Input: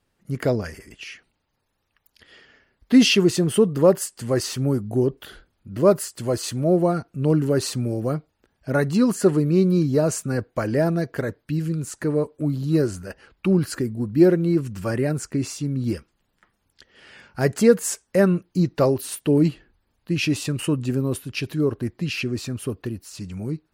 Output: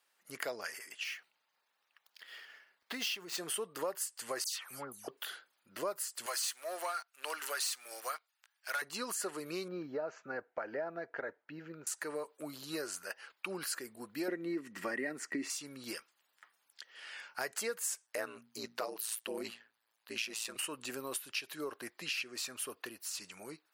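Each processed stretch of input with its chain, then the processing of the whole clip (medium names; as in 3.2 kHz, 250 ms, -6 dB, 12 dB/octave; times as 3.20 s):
1.04–3.38 s: median filter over 5 samples + peaking EQ 170 Hz +7 dB 0.34 oct + compression 4:1, threshold -21 dBFS
4.44–5.08 s: peaking EQ 370 Hz -10 dB 1.7 oct + phase dispersion lows, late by 143 ms, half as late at 2.3 kHz
6.26–8.82 s: high-pass 1.2 kHz + waveshaping leveller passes 2
9.68–11.87 s: low-pass 1.4 kHz + band-stop 1.1 kHz, Q 6.6 + careless resampling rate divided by 3×, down none, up filtered
14.28–15.50 s: treble shelf 5.6 kHz -10.5 dB + small resonant body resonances 260/1900 Hz, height 17 dB, ringing for 25 ms
18.06–20.56 s: hum notches 60/120/180/240 Hz + ring modulator 56 Hz
whole clip: high-pass 920 Hz 12 dB/octave; treble shelf 11 kHz +6 dB; compression 4:1, threshold -36 dBFS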